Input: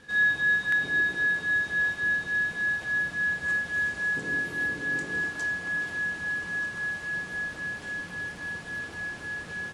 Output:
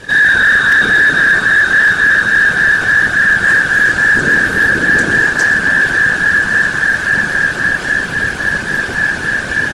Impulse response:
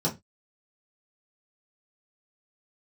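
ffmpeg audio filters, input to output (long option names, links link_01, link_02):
-filter_complex "[0:a]asplit=5[link_01][link_02][link_03][link_04][link_05];[link_02]adelay=124,afreqshift=-140,volume=-13dB[link_06];[link_03]adelay=248,afreqshift=-280,volume=-20.3dB[link_07];[link_04]adelay=372,afreqshift=-420,volume=-27.7dB[link_08];[link_05]adelay=496,afreqshift=-560,volume=-35dB[link_09];[link_01][link_06][link_07][link_08][link_09]amix=inputs=5:normalize=0,afftfilt=real='hypot(re,im)*cos(2*PI*random(0))':imag='hypot(re,im)*sin(2*PI*random(1))':win_size=512:overlap=0.75,apsyclip=30dB,volume=-4.5dB"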